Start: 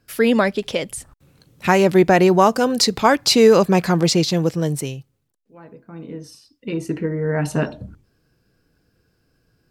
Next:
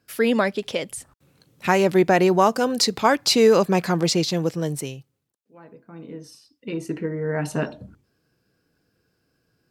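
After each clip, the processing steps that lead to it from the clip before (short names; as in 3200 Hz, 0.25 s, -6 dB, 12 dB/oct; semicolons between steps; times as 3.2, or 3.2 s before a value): HPF 140 Hz 6 dB/oct; gain -3 dB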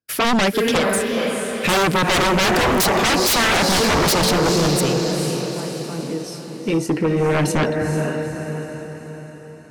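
expander -46 dBFS; diffused feedback echo 0.46 s, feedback 50%, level -7 dB; sine folder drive 16 dB, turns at -4.5 dBFS; gain -9 dB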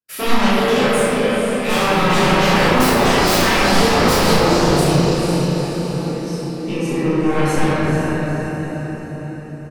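doubler 35 ms -4 dB; shoebox room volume 150 m³, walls hard, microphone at 1.5 m; gain -10.5 dB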